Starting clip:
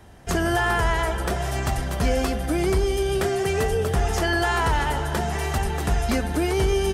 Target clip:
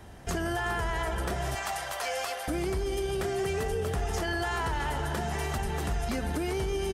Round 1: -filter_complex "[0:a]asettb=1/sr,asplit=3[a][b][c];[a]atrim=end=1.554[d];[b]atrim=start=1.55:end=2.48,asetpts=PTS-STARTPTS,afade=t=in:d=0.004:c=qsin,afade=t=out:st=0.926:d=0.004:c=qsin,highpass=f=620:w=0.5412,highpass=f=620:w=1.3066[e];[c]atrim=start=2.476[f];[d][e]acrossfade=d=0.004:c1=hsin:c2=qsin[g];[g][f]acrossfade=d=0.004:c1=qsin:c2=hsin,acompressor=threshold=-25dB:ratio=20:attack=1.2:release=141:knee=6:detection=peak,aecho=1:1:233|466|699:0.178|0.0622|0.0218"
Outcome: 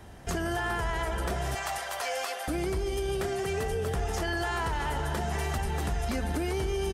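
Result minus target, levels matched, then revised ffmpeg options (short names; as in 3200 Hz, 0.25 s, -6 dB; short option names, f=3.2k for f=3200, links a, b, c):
echo 0.142 s early
-filter_complex "[0:a]asettb=1/sr,asplit=3[a][b][c];[a]atrim=end=1.554[d];[b]atrim=start=1.55:end=2.48,asetpts=PTS-STARTPTS,afade=t=in:d=0.004:c=qsin,afade=t=out:st=0.926:d=0.004:c=qsin,highpass=f=620:w=0.5412,highpass=f=620:w=1.3066[e];[c]atrim=start=2.476[f];[d][e]acrossfade=d=0.004:c1=hsin:c2=qsin[g];[g][f]acrossfade=d=0.004:c1=qsin:c2=hsin,acompressor=threshold=-25dB:ratio=20:attack=1.2:release=141:knee=6:detection=peak,aecho=1:1:375|750|1125:0.178|0.0622|0.0218"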